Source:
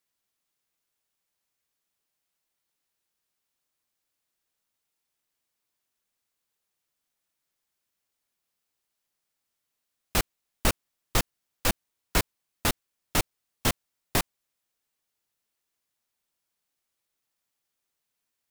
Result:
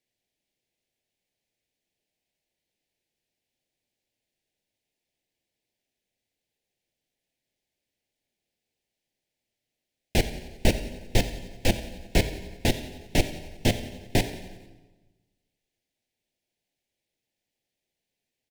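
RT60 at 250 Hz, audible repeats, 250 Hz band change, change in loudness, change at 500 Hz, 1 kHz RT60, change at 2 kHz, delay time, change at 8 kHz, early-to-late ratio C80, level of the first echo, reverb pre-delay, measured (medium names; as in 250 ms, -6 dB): 1.4 s, 5, +6.0 dB, +1.5 dB, +5.5 dB, 1.2 s, 0.0 dB, 90 ms, -4.0 dB, 11.5 dB, -17.0 dB, 7 ms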